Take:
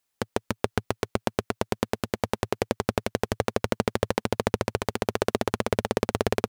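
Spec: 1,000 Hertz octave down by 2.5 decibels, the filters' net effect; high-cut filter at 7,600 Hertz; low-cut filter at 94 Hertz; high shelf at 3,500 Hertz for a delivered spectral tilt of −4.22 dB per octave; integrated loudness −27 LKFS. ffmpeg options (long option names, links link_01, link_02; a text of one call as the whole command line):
ffmpeg -i in.wav -af "highpass=94,lowpass=7600,equalizer=frequency=1000:width_type=o:gain=-4,highshelf=frequency=3500:gain=7.5,volume=2dB" out.wav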